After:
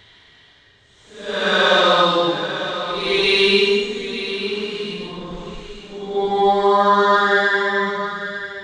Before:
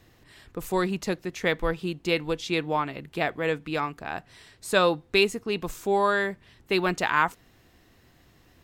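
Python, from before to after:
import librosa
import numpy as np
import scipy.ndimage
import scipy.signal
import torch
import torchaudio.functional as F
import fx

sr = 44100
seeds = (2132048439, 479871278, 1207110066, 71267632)

p1 = scipy.ndimage.median_filter(x, 9, mode='constant')
p2 = scipy.signal.sosfilt(scipy.signal.butter(4, 6900.0, 'lowpass', fs=sr, output='sos'), p1)
p3 = fx.peak_eq(p2, sr, hz=3400.0, db=10.5, octaves=0.89)
p4 = fx.notch(p3, sr, hz=2600.0, q=7.0)
p5 = fx.level_steps(p4, sr, step_db=23)
p6 = p4 + (p5 * 10.0 ** (-1.5 / 20.0))
p7 = fx.paulstretch(p6, sr, seeds[0], factor=4.1, window_s=0.25, from_s=4.36)
p8 = fx.dynamic_eq(p7, sr, hz=1400.0, q=0.75, threshold_db=-33.0, ratio=4.0, max_db=4)
y = p8 + fx.echo_single(p8, sr, ms=899, db=-10.5, dry=0)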